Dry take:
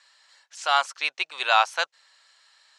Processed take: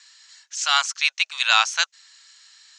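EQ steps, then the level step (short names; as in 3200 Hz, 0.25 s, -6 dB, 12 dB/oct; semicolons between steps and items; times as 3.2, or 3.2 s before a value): HPF 1500 Hz 12 dB/oct; synth low-pass 6700 Hz, resonance Q 3.1; +5.0 dB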